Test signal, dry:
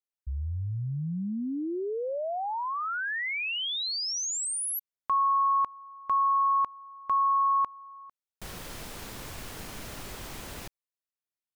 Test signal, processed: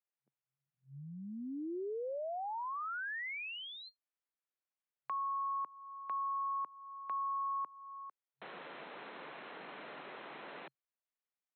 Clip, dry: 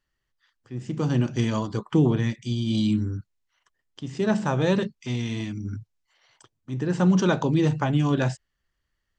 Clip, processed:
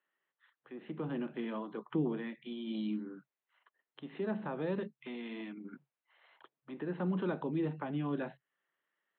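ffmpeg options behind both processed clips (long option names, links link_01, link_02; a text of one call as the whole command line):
ffmpeg -i in.wav -filter_complex "[0:a]afftfilt=real='re*between(b*sr/4096,130,4200)':imag='im*between(b*sr/4096,130,4200)':win_size=4096:overlap=0.75,acrossover=split=300[link_01][link_02];[link_02]acompressor=threshold=-42dB:ratio=2.5:attack=1.9:release=426:knee=2.83:detection=peak[link_03];[link_01][link_03]amix=inputs=2:normalize=0,acrossover=split=340 3000:gain=0.126 1 0.0708[link_04][link_05][link_06];[link_04][link_05][link_06]amix=inputs=3:normalize=0" out.wav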